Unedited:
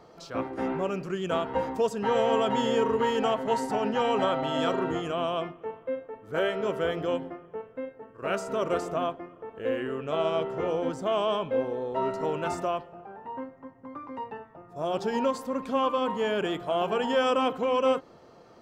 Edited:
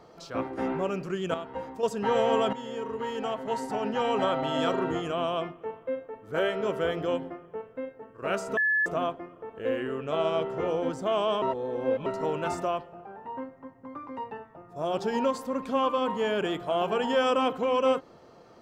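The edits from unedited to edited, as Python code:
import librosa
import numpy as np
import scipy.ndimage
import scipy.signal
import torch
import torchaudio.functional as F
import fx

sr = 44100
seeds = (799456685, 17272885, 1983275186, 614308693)

y = fx.edit(x, sr, fx.clip_gain(start_s=1.34, length_s=0.49, db=-8.0),
    fx.fade_in_from(start_s=2.53, length_s=1.88, floor_db=-13.5),
    fx.bleep(start_s=8.57, length_s=0.29, hz=1720.0, db=-21.5),
    fx.reverse_span(start_s=11.42, length_s=0.64), tone=tone)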